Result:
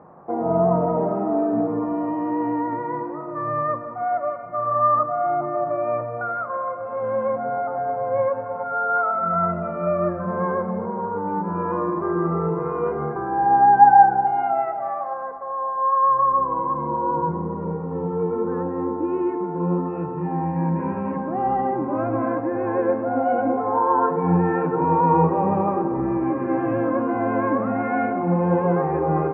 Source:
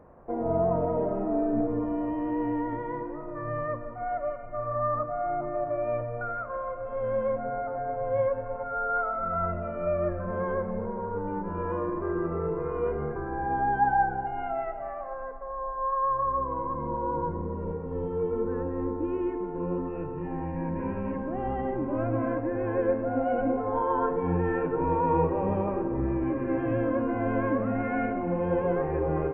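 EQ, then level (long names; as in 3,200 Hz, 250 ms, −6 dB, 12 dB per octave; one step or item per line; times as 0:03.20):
loudspeaker in its box 130–2,800 Hz, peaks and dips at 170 Hz +10 dB, 350 Hz +3 dB, 810 Hz +9 dB, 1,200 Hz +8 dB
+3.0 dB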